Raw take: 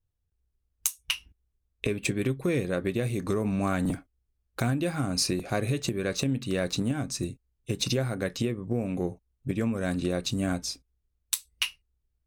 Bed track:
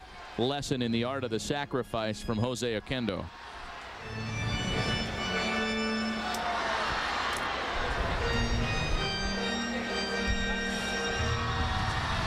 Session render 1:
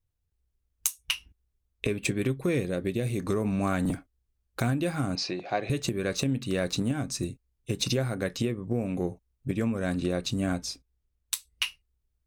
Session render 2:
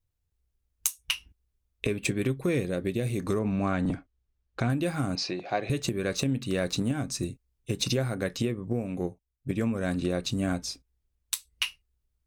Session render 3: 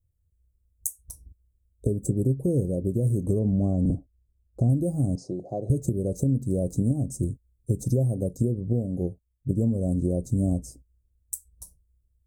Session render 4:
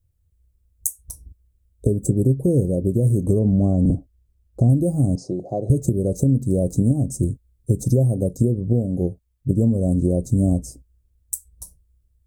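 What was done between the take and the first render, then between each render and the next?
0:02.63–0:03.07: dynamic equaliser 1,200 Hz, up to −8 dB, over −47 dBFS, Q 1; 0:05.15–0:05.70: loudspeaker in its box 230–4,800 Hz, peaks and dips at 240 Hz −10 dB, 440 Hz −4 dB, 750 Hz +6 dB, 1,300 Hz −4 dB; 0:09.72–0:11.67: high-shelf EQ 6,300 Hz −4 dB
0:03.39–0:04.70: high-frequency loss of the air 110 metres; 0:08.72–0:09.50: expander for the loud parts, over −45 dBFS
elliptic band-stop filter 590–7,700 Hz, stop band 80 dB; parametric band 72 Hz +10.5 dB 2.6 octaves
level +6 dB

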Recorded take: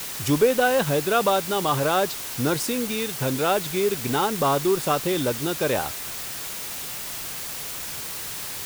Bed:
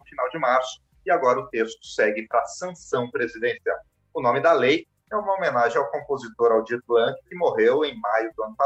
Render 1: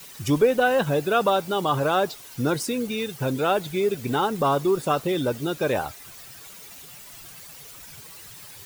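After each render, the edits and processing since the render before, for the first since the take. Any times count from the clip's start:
broadband denoise 13 dB, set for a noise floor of −33 dBFS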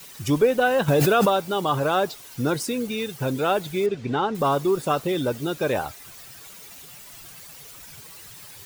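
0:00.88–0:01.29: envelope flattener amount 100%
0:03.86–0:04.35: high-frequency loss of the air 130 metres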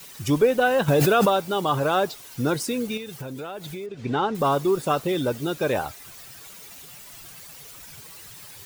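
0:02.97–0:04.03: downward compressor 8 to 1, threshold −31 dBFS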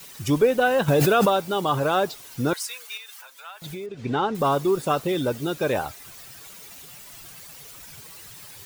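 0:02.53–0:03.62: high-pass filter 960 Hz 24 dB per octave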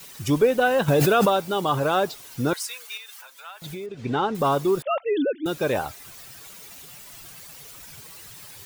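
0:04.82–0:05.46: three sine waves on the formant tracks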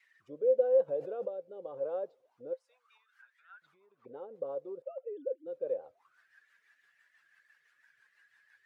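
rotating-speaker cabinet horn 0.9 Hz, later 6 Hz, at 0:02.33
envelope filter 520–2,200 Hz, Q 16, down, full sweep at −28 dBFS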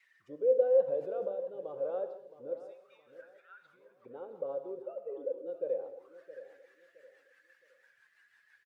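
repeating echo 667 ms, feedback 30%, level −14.5 dB
reverb whose tail is shaped and stops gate 220 ms flat, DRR 8.5 dB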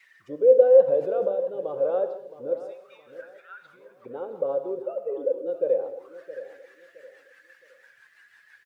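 level +10.5 dB

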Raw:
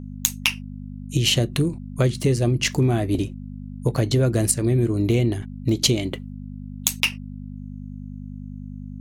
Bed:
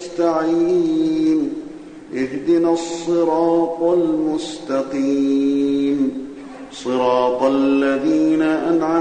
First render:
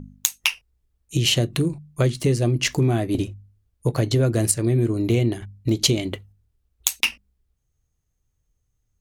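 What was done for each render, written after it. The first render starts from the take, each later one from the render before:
hum removal 50 Hz, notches 5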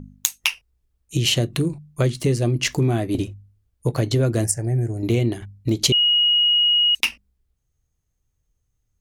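0:04.44–0:05.03: drawn EQ curve 130 Hz 0 dB, 260 Hz −10 dB, 540 Hz −4 dB, 800 Hz +6 dB, 1,100 Hz −19 dB, 1,700 Hz 0 dB, 3,800 Hz −26 dB, 5,400 Hz +1 dB, 7,700 Hz 0 dB, 12,000 Hz −5 dB
0:05.92–0:06.95: beep over 2,890 Hz −14 dBFS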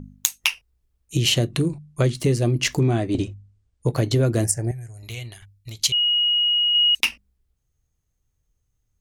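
0:01.51–0:02.15: low-pass filter 11,000 Hz 24 dB per octave
0:02.79–0:03.88: Butterworth low-pass 9,200 Hz 48 dB per octave
0:04.71–0:06.75: guitar amp tone stack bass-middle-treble 10-0-10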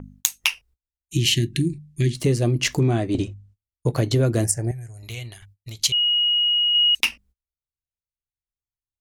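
0:00.79–0:02.14: gain on a spectral selection 400–1,600 Hz −26 dB
noise gate −51 dBFS, range −27 dB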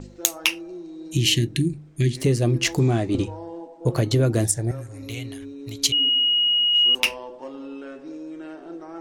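mix in bed −20.5 dB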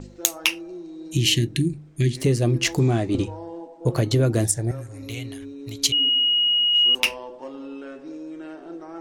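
no processing that can be heard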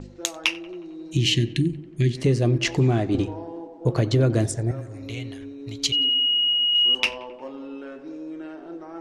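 high-frequency loss of the air 76 metres
tape delay 91 ms, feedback 81%, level −17.5 dB, low-pass 2,200 Hz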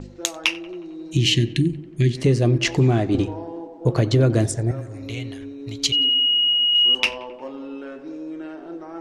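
level +2.5 dB
brickwall limiter −3 dBFS, peak gain reduction 1 dB

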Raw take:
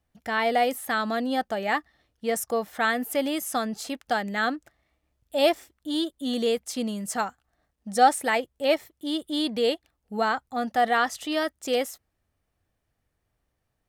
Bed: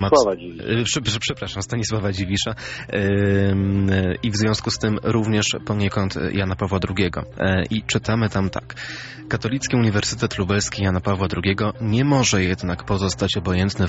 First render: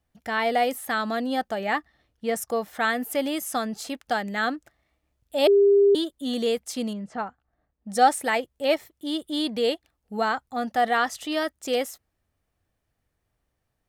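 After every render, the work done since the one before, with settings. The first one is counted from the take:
0:01.60–0:02.42: bass and treble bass +2 dB, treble −3 dB
0:05.47–0:05.95: beep over 401 Hz −13.5 dBFS
0:06.93–0:07.90: head-to-tape spacing loss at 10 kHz 33 dB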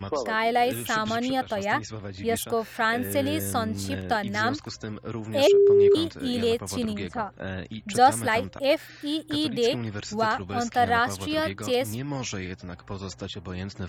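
mix in bed −14.5 dB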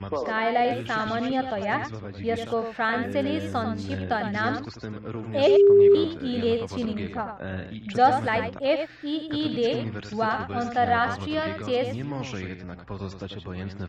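high-frequency loss of the air 180 metres
single-tap delay 95 ms −7.5 dB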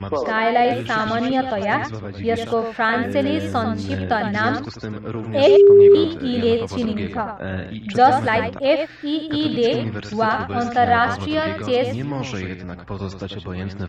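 level +6 dB
brickwall limiter −3 dBFS, peak gain reduction 1.5 dB

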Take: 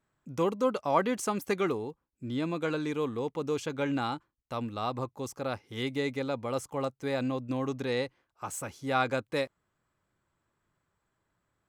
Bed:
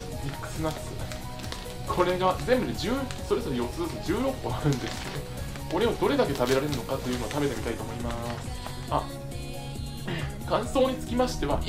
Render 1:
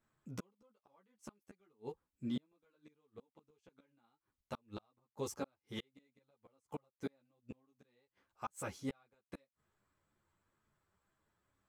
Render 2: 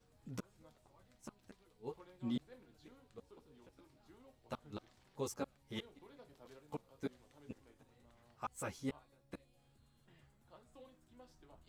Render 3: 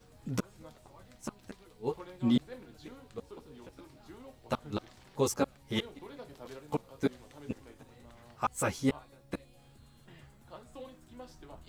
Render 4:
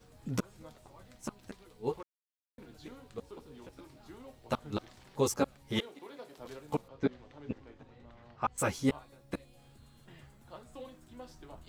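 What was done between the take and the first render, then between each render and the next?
gate with flip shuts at −25 dBFS, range −41 dB; string-ensemble chorus
mix in bed −35.5 dB
level +12 dB
0:02.03–0:02.58: silence; 0:05.80–0:06.38: high-pass filter 270 Hz; 0:06.88–0:08.58: high-frequency loss of the air 170 metres

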